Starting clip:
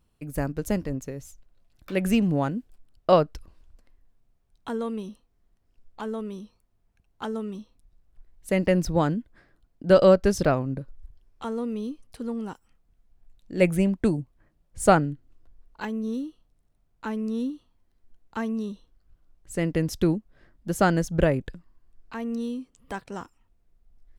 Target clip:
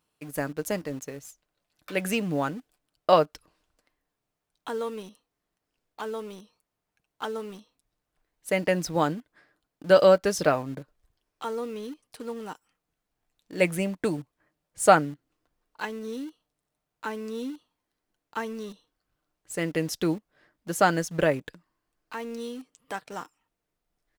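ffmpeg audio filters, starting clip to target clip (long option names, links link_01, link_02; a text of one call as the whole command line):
ffmpeg -i in.wav -filter_complex "[0:a]highpass=frequency=550:poles=1,aecho=1:1:6.6:0.31,asplit=2[link_01][link_02];[link_02]acrusher=bits=6:mix=0:aa=0.000001,volume=-10dB[link_03];[link_01][link_03]amix=inputs=2:normalize=0" out.wav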